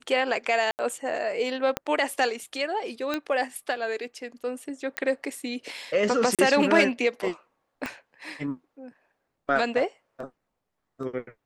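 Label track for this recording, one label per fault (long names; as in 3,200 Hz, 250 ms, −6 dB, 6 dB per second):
0.710000	0.790000	drop-out 79 ms
1.770000	1.770000	click −11 dBFS
3.140000	3.140000	click −14 dBFS
4.970000	4.970000	click −13 dBFS
6.350000	6.390000	drop-out 37 ms
7.860000	7.860000	click −17 dBFS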